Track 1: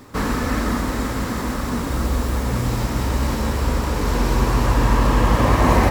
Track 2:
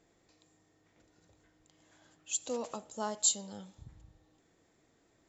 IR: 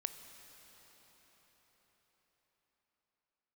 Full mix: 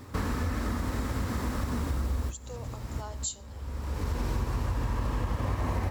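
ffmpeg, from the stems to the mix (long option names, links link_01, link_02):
-filter_complex "[0:a]equalizer=frequency=82:width_type=o:width=0.75:gain=12.5,volume=-5dB[link_01];[1:a]highpass=410,volume=-5.5dB,asplit=2[link_02][link_03];[link_03]apad=whole_len=260480[link_04];[link_01][link_04]sidechaincompress=threshold=-57dB:ratio=12:attack=16:release=533[link_05];[link_05][link_02]amix=inputs=2:normalize=0,acompressor=threshold=-27dB:ratio=6"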